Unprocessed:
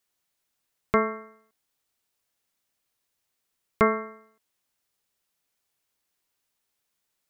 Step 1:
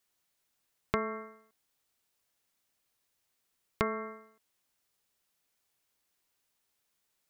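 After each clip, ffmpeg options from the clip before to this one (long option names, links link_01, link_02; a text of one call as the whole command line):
ffmpeg -i in.wav -af "acompressor=threshold=-27dB:ratio=12" out.wav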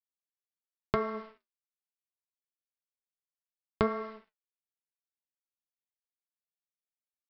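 ffmpeg -i in.wav -af "equalizer=frequency=2200:width=1.4:gain=-7,aresample=11025,aeval=exprs='sgn(val(0))*max(abs(val(0))-0.00168,0)':channel_layout=same,aresample=44100,flanger=delay=6.9:depth=7.1:regen=60:speed=1:shape=triangular,volume=7.5dB" out.wav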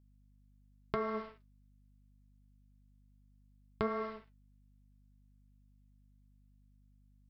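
ffmpeg -i in.wav -af "alimiter=limit=-17.5dB:level=0:latency=1:release=220,aeval=exprs='val(0)+0.000562*(sin(2*PI*50*n/s)+sin(2*PI*2*50*n/s)/2+sin(2*PI*3*50*n/s)/3+sin(2*PI*4*50*n/s)/4+sin(2*PI*5*50*n/s)/5)':channel_layout=same,volume=1dB" out.wav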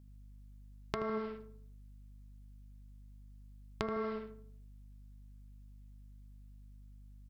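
ffmpeg -i in.wav -filter_complex "[0:a]acompressor=threshold=-44dB:ratio=5,asplit=2[link_01][link_02];[link_02]adelay=78,lowpass=frequency=1100:poles=1,volume=-7.5dB,asplit=2[link_03][link_04];[link_04]adelay=78,lowpass=frequency=1100:poles=1,volume=0.51,asplit=2[link_05][link_06];[link_06]adelay=78,lowpass=frequency=1100:poles=1,volume=0.51,asplit=2[link_07][link_08];[link_08]adelay=78,lowpass=frequency=1100:poles=1,volume=0.51,asplit=2[link_09][link_10];[link_10]adelay=78,lowpass=frequency=1100:poles=1,volume=0.51,asplit=2[link_11][link_12];[link_12]adelay=78,lowpass=frequency=1100:poles=1,volume=0.51[link_13];[link_03][link_05][link_07][link_09][link_11][link_13]amix=inputs=6:normalize=0[link_14];[link_01][link_14]amix=inputs=2:normalize=0,volume=8.5dB" out.wav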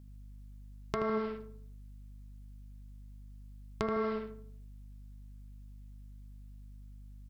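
ffmpeg -i in.wav -af "asoftclip=type=tanh:threshold=-19.5dB,volume=4.5dB" out.wav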